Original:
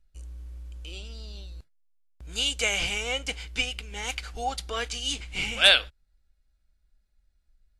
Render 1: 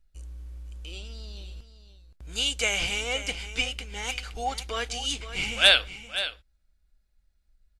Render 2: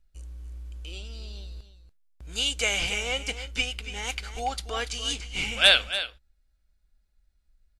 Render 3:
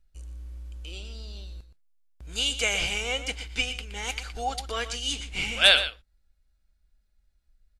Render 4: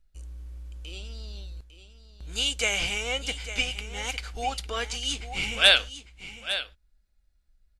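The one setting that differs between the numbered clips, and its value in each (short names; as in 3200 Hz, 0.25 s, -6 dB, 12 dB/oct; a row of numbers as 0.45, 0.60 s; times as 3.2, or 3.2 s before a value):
echo, time: 0.521, 0.286, 0.12, 0.852 s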